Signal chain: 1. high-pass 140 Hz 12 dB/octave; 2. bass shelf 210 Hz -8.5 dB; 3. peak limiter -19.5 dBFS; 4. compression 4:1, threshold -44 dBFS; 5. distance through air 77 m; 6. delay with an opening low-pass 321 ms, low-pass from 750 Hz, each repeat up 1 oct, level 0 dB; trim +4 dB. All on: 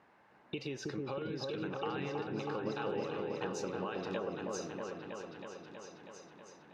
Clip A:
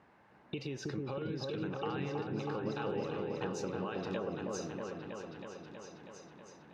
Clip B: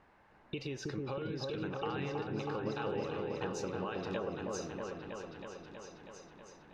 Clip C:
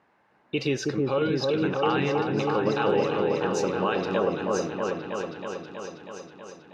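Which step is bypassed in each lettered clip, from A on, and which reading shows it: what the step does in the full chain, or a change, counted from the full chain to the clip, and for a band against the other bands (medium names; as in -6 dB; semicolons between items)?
2, 125 Hz band +4.5 dB; 1, 125 Hz band +3.0 dB; 4, mean gain reduction 11.5 dB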